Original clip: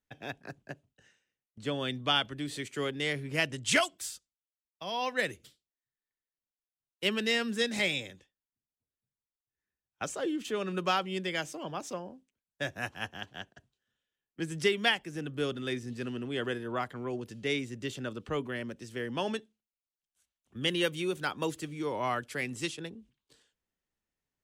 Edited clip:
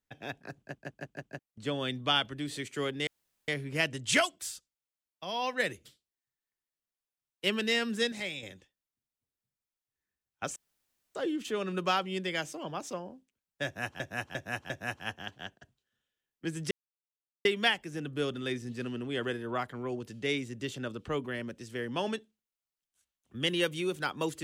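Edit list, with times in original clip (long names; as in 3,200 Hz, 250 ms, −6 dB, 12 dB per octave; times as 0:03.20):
0:00.59: stutter in place 0.16 s, 5 plays
0:03.07: splice in room tone 0.41 s
0:07.71–0:08.02: clip gain −7.5 dB
0:10.15: splice in room tone 0.59 s
0:12.65–0:13.00: repeat, 4 plays
0:14.66: splice in silence 0.74 s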